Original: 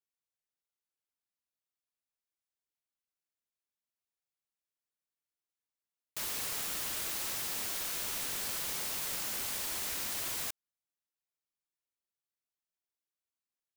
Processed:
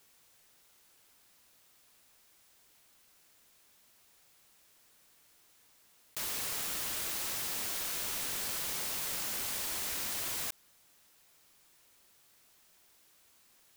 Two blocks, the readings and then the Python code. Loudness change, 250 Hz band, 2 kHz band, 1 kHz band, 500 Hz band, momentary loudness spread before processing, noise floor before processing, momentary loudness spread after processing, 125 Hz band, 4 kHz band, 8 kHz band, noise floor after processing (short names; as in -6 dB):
0.0 dB, +0.5 dB, +0.5 dB, +0.5 dB, +0.5 dB, 3 LU, under -85 dBFS, 2 LU, +0.5 dB, +0.5 dB, +0.5 dB, -65 dBFS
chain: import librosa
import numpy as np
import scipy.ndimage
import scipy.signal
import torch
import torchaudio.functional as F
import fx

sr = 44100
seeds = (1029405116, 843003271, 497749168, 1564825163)

y = fx.env_flatten(x, sr, amount_pct=50)